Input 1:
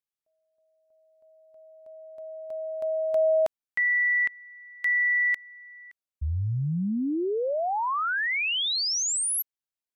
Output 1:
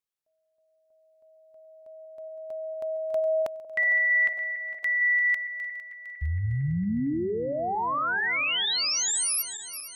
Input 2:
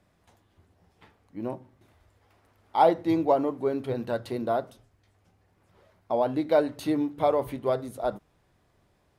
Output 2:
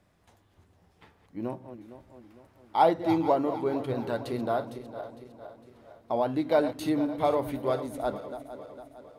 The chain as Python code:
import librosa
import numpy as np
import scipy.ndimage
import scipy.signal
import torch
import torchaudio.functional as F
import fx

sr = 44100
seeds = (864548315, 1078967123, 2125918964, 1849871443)

y = fx.reverse_delay_fb(x, sr, ms=228, feedback_pct=68, wet_db=-12)
y = fx.dynamic_eq(y, sr, hz=530.0, q=1.4, threshold_db=-34.0, ratio=4.0, max_db=-3)